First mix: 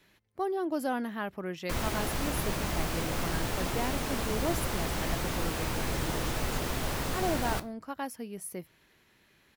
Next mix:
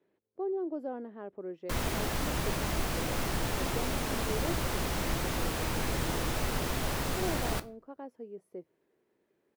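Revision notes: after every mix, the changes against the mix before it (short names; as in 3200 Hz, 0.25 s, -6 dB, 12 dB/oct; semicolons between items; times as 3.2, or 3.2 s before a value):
speech: add band-pass 420 Hz, Q 2.2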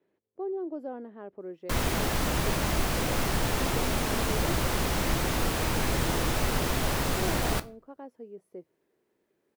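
background +4.5 dB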